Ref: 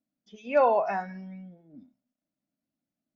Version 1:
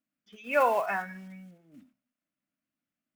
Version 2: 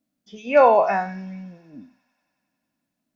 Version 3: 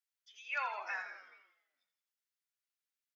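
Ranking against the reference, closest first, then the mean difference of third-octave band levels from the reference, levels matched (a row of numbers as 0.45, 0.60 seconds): 2, 1, 3; 1.5, 4.5, 9.5 decibels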